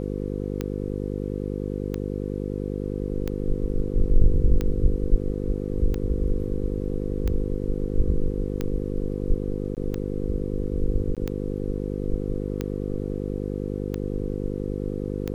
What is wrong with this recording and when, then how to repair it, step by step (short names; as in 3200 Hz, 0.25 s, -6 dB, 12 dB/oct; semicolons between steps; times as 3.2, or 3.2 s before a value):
buzz 50 Hz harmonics 10 -29 dBFS
tick 45 rpm -15 dBFS
9.75–9.77 gap 18 ms
11.15–11.17 gap 17 ms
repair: de-click; de-hum 50 Hz, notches 10; interpolate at 9.75, 18 ms; interpolate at 11.15, 17 ms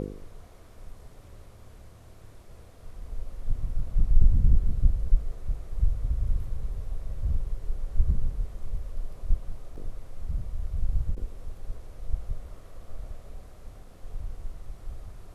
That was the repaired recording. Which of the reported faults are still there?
none